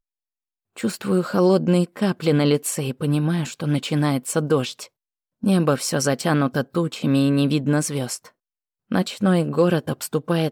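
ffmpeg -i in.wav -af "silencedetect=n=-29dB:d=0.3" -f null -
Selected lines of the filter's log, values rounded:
silence_start: 0.00
silence_end: 0.78 | silence_duration: 0.78
silence_start: 4.84
silence_end: 5.43 | silence_duration: 0.60
silence_start: 8.16
silence_end: 8.92 | silence_duration: 0.75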